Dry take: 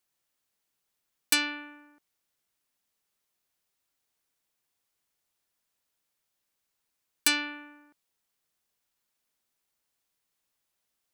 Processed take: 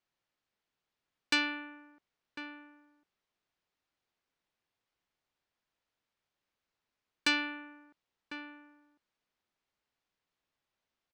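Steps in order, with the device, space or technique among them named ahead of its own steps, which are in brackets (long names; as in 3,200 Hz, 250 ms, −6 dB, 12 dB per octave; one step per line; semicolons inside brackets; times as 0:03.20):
shout across a valley (high-frequency loss of the air 160 metres; slap from a distant wall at 180 metres, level −10 dB)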